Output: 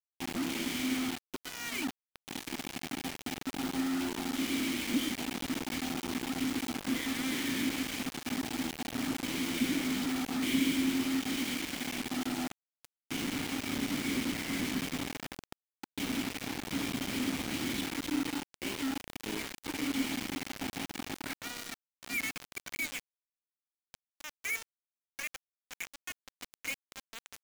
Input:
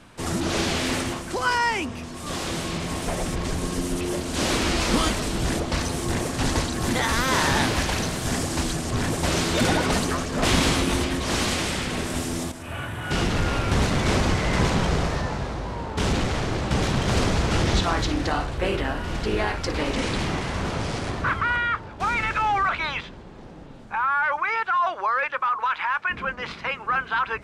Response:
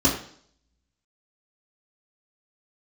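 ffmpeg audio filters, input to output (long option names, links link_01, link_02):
-filter_complex "[0:a]asplit=3[link_01][link_02][link_03];[link_01]bandpass=frequency=270:width_type=q:width=8,volume=0dB[link_04];[link_02]bandpass=frequency=2290:width_type=q:width=8,volume=-6dB[link_05];[link_03]bandpass=frequency=3010:width_type=q:width=8,volume=-9dB[link_06];[link_04][link_05][link_06]amix=inputs=3:normalize=0,highshelf=frequency=10000:gain=4.5,asplit=2[link_07][link_08];[link_08]adelay=617,lowpass=frequency=2000:poles=1,volume=-24dB,asplit=2[link_09][link_10];[link_10]adelay=617,lowpass=frequency=2000:poles=1,volume=0.52,asplit=2[link_11][link_12];[link_12]adelay=617,lowpass=frequency=2000:poles=1,volume=0.52[link_13];[link_07][link_09][link_11][link_13]amix=inputs=4:normalize=0,acrusher=bits=5:mix=0:aa=0.000001"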